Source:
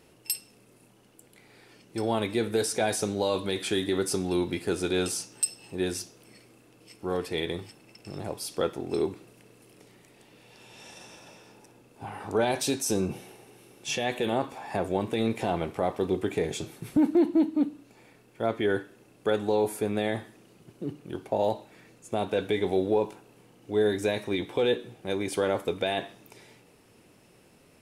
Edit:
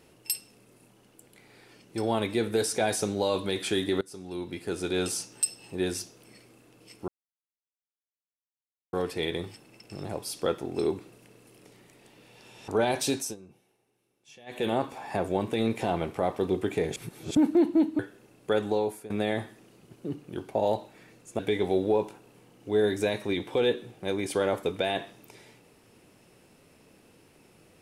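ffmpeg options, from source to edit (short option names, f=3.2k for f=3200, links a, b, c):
-filter_complex "[0:a]asplit=11[a][b][c][d][e][f][g][h][i][j][k];[a]atrim=end=4.01,asetpts=PTS-STARTPTS,afade=t=out:st=4.006:d=0.004:c=hsin:silence=0.0668344[l];[b]atrim=start=4.01:end=7.08,asetpts=PTS-STARTPTS,afade=t=in:d=1.15:silence=0.0668344,afade=t=out:st=3.066:d=0.004:c=hsin,apad=pad_dur=1.85[m];[c]atrim=start=7.08:end=10.832,asetpts=PTS-STARTPTS,afade=t=in:d=0.004:c=hsin[n];[d]atrim=start=12.278:end=12.96,asetpts=PTS-STARTPTS,afade=t=out:st=0.502:d=0.18:silence=0.0794328[o];[e]atrim=start=12.96:end=14.06,asetpts=PTS-STARTPTS,volume=-22dB[p];[f]atrim=start=14.06:end=16.562,asetpts=PTS-STARTPTS,afade=t=in:d=0.18:silence=0.0794328[q];[g]atrim=start=16.558:end=16.952,asetpts=PTS-STARTPTS,areverse[r];[h]atrim=start=16.948:end=17.592[s];[i]atrim=start=18.758:end=19.87,asetpts=PTS-STARTPTS,afade=t=out:st=0.702:d=0.41:silence=0.11885[t];[j]atrim=start=19.87:end=22.162,asetpts=PTS-STARTPTS,afade=t=in:d=0.004:c=hsin:silence=0.11885[u];[k]atrim=start=22.408[v];[l][m][n]concat=n=3:v=0:a=1[w];[o][p][q]concat=n=3:v=0:a=1[x];[w][x]acrossfade=d=0.004:c1=hsin:c2=hsin[y];[y][r]acrossfade=d=0.004:c1=hsin:c2=hsin[z];[z][s]acrossfade=d=0.004:c1=hsin:c2=hsin[aa];[t][u]concat=n=2:v=0:a=1[ab];[aa][ab]acrossfade=d=0.004:c1=hsin:c2=hsin[ac];[ac][v]acrossfade=d=0.004:c1=hsin:c2=hsin"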